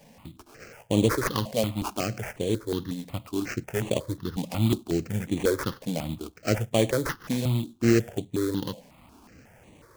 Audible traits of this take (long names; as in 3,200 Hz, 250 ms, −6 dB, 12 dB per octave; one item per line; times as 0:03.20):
aliases and images of a low sample rate 3,800 Hz, jitter 20%
notches that jump at a steady rate 5.5 Hz 350–5,100 Hz